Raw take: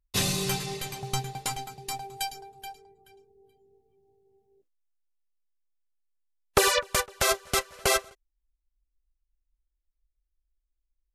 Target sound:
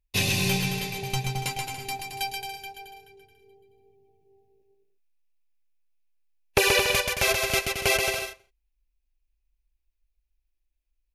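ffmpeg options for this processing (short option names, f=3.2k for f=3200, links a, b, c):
-af "equalizer=f=100:t=o:w=0.33:g=5,equalizer=f=1.25k:t=o:w=0.33:g=-10,equalizer=f=2.5k:t=o:w=0.33:g=10,equalizer=f=8k:t=o:w=0.33:g=-7,aecho=1:1:130|221|284.7|329.3|360.5:0.631|0.398|0.251|0.158|0.1"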